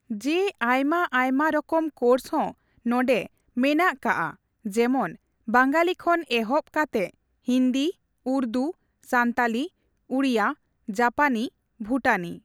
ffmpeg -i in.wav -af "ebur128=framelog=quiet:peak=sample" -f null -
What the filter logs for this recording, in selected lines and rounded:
Integrated loudness:
  I:         -24.5 LUFS
  Threshold: -34.8 LUFS
Loudness range:
  LRA:         2.2 LU
  Threshold: -44.9 LUFS
  LRA low:   -26.1 LUFS
  LRA high:  -23.9 LUFS
Sample peak:
  Peak:       -6.4 dBFS